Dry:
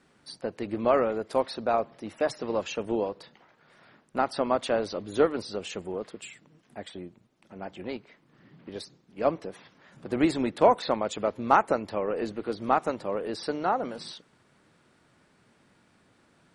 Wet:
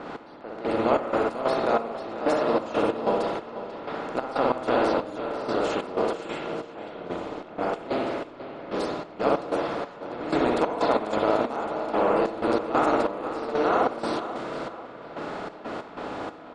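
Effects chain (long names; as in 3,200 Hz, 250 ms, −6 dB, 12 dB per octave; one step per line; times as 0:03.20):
compressor on every frequency bin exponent 0.4
reversed playback
upward compression, threshold −27 dBFS
reversed playback
spring reverb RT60 1 s, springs 56 ms, chirp 40 ms, DRR −2.5 dB
gate pattern "x...xx.x.x" 93 BPM −12 dB
on a send: repeating echo 491 ms, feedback 44%, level −12 dB
on the sum: low-pass that shuts in the quiet parts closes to 2,100 Hz, open at −17 dBFS
level −7 dB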